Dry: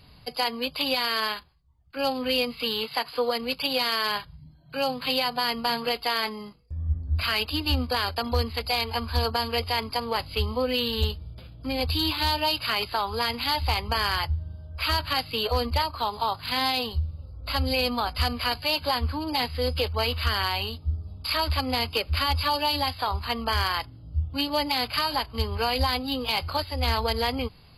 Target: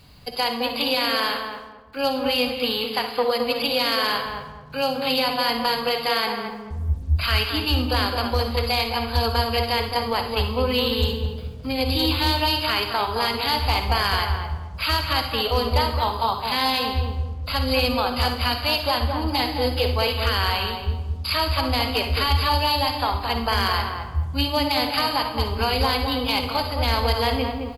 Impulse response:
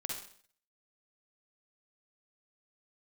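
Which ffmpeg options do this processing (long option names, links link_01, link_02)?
-filter_complex "[0:a]asplit=2[link_01][link_02];[1:a]atrim=start_sample=2205[link_03];[link_02][link_03]afir=irnorm=-1:irlink=0,volume=0.5dB[link_04];[link_01][link_04]amix=inputs=2:normalize=0,acrusher=bits=8:mix=0:aa=0.5,asplit=2[link_05][link_06];[link_06]adelay=216,lowpass=frequency=1100:poles=1,volume=-3.5dB,asplit=2[link_07][link_08];[link_08]adelay=216,lowpass=frequency=1100:poles=1,volume=0.37,asplit=2[link_09][link_10];[link_10]adelay=216,lowpass=frequency=1100:poles=1,volume=0.37,asplit=2[link_11][link_12];[link_12]adelay=216,lowpass=frequency=1100:poles=1,volume=0.37,asplit=2[link_13][link_14];[link_14]adelay=216,lowpass=frequency=1100:poles=1,volume=0.37[link_15];[link_05][link_07][link_09][link_11][link_13][link_15]amix=inputs=6:normalize=0,volume=-2.5dB"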